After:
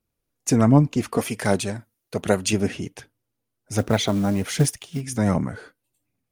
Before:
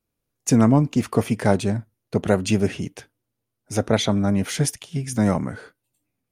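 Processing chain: phaser 1.3 Hz, delay 4.4 ms, feedback 35%; 1.17–2.53 s: tilt EQ +2 dB/octave; 3.78–5.01 s: companded quantiser 6-bit; trim -1 dB

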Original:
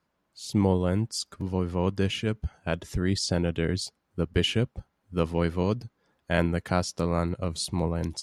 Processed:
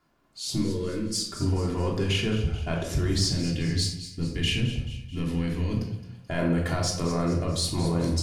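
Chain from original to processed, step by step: in parallel at -7 dB: one-sided clip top -33.5 dBFS; on the sum: peak limiter -20.5 dBFS, peak gain reduction 11 dB; 0.58–1.29 s: static phaser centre 310 Hz, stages 4; 3.28–5.73 s: time-frequency box 330–1600 Hz -9 dB; on a send: two-band feedback delay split 2.3 kHz, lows 84 ms, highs 217 ms, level -12 dB; on the sum: simulated room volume 910 m³, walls furnished, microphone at 3.2 m

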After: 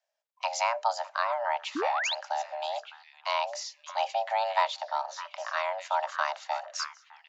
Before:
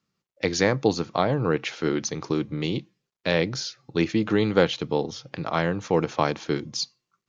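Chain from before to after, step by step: repeats whose band climbs or falls 608 ms, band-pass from 890 Hz, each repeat 1.4 oct, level -6.5 dB; frequency shift +460 Hz; painted sound rise, 1.75–2.15 s, 260–4500 Hz -24 dBFS; trim -6.5 dB

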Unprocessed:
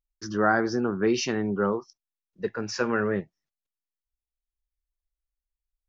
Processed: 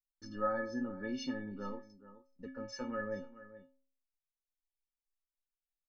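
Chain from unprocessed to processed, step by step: tilt EQ -2 dB/octave; on a send: delay 428 ms -19 dB; on the sum: gate with hold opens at -45 dBFS; in parallel at 0 dB: compression, threshold -32 dBFS, peak gain reduction 15.5 dB; on the sum: bass shelf 240 Hz +5.5 dB; inharmonic resonator 260 Hz, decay 0.49 s, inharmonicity 0.03; trim +1.5 dB

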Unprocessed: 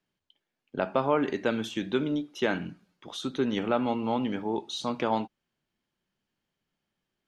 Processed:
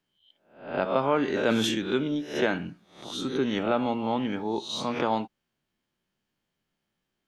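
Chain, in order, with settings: reverse spectral sustain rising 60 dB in 0.48 s; 1.28–1.75 s: decay stretcher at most 21 dB/s

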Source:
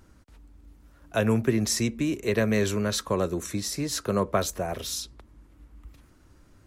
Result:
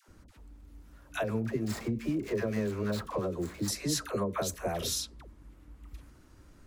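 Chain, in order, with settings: 1.24–3.68 s: median filter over 15 samples; compression 10:1, threshold -27 dBFS, peak gain reduction 10.5 dB; phase dispersion lows, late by 86 ms, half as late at 640 Hz

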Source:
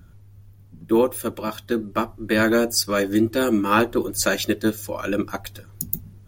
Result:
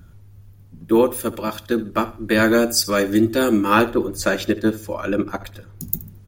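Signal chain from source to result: 3.89–5.83 s: treble shelf 3.4 kHz -10 dB; feedback delay 73 ms, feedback 27%, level -17 dB; trim +2.5 dB

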